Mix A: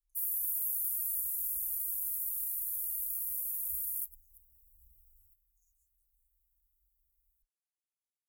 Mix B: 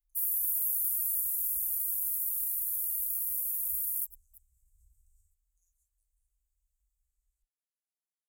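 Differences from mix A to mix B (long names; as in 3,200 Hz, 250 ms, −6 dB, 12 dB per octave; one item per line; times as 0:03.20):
first sound +3.5 dB
second sound: add low-pass with resonance 7,300 Hz, resonance Q 2.4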